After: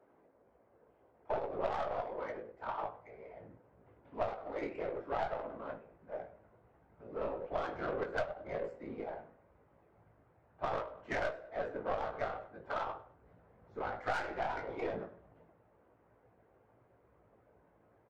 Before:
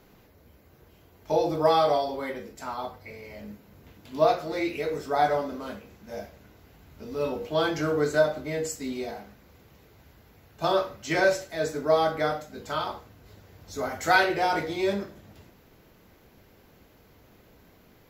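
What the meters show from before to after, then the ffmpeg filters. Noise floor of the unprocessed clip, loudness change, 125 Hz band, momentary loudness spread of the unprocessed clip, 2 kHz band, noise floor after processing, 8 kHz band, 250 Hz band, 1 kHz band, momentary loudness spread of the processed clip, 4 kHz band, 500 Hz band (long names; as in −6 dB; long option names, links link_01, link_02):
−58 dBFS, −13.0 dB, −13.5 dB, 18 LU, −13.5 dB, −69 dBFS, below −25 dB, −15.0 dB, −11.5 dB, 13 LU, −19.5 dB, −12.5 dB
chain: -filter_complex "[0:a]afftfilt=real='hypot(re,im)*cos(2*PI*random(0))':imag='hypot(re,im)*sin(2*PI*random(1))':win_size=512:overlap=0.75,highpass=77,acrossover=split=350 2600:gain=0.1 1 0.224[link_01][link_02][link_03];[link_01][link_02][link_03]amix=inputs=3:normalize=0,adynamicsmooth=sensitivity=3:basefreq=1100,asplit=2[link_04][link_05];[link_05]adelay=18,volume=-6dB[link_06];[link_04][link_06]amix=inputs=2:normalize=0,asplit=2[link_07][link_08];[link_08]adelay=100,lowpass=frequency=2800:poles=1,volume=-18dB,asplit=2[link_09][link_10];[link_10]adelay=100,lowpass=frequency=2800:poles=1,volume=0.32,asplit=2[link_11][link_12];[link_12]adelay=100,lowpass=frequency=2800:poles=1,volume=0.32[link_13];[link_09][link_11][link_13]amix=inputs=3:normalize=0[link_14];[link_07][link_14]amix=inputs=2:normalize=0,asubboost=boost=6:cutoff=120,aeval=exprs='0.224*(cos(1*acos(clip(val(0)/0.224,-1,1)))-cos(1*PI/2))+0.0224*(cos(6*acos(clip(val(0)/0.224,-1,1)))-cos(6*PI/2))':channel_layout=same,acompressor=threshold=-36dB:ratio=6,volume=3.5dB"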